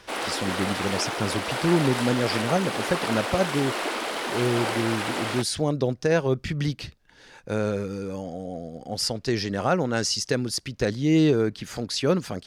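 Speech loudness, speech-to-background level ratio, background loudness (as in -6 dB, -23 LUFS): -26.0 LUFS, 2.5 dB, -28.5 LUFS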